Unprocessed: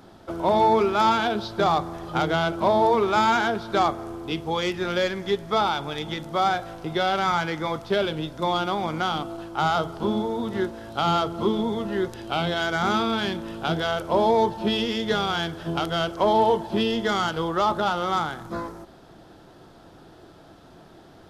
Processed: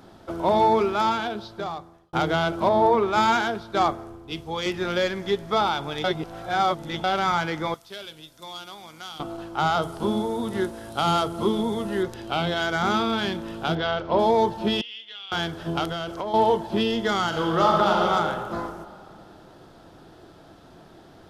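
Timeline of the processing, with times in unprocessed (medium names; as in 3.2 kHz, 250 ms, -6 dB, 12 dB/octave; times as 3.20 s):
0.64–2.13 s: fade out
2.69–4.66 s: three bands expanded up and down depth 70%
6.04–7.04 s: reverse
7.74–9.20 s: pre-emphasis filter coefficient 0.9
9.82–12.03 s: peaking EQ 9.9 kHz +12 dB 0.78 oct
13.75–14.19 s: low-pass 4.7 kHz 24 dB/octave
14.81–15.32 s: band-pass filter 2.9 kHz, Q 6.8
15.89–16.34 s: compression 12:1, threshold -25 dBFS
17.26–18.03 s: reverb throw, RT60 2.5 s, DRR -1 dB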